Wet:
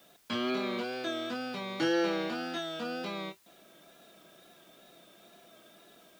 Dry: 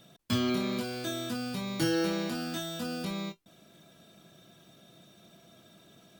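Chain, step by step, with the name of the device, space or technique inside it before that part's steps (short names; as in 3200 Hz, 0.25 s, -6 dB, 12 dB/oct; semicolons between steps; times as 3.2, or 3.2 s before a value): dictaphone (BPF 340–3400 Hz; AGC gain up to 3 dB; wow and flutter; white noise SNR 29 dB)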